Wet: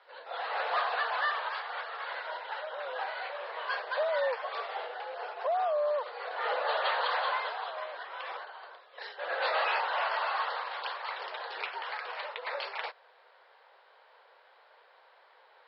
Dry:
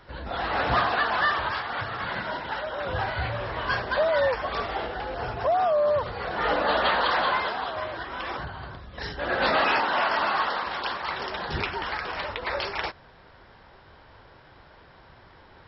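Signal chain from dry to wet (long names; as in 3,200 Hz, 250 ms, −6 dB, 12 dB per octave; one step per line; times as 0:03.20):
Chebyshev band-pass filter 470–4,500 Hz, order 4
level −6 dB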